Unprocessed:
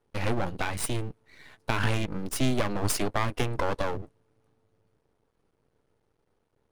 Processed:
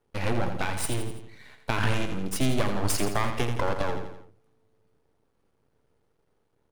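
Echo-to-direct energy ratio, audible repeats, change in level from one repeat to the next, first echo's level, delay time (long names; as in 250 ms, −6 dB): −6.5 dB, 4, −6.0 dB, −8.0 dB, 84 ms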